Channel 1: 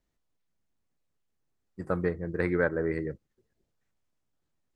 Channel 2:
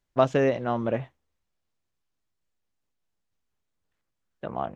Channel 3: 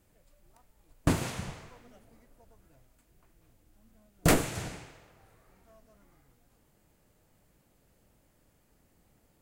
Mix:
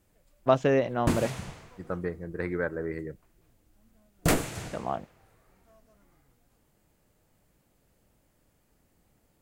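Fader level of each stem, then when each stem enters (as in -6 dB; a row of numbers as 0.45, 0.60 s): -4.0, -1.0, -1.0 dB; 0.00, 0.30, 0.00 s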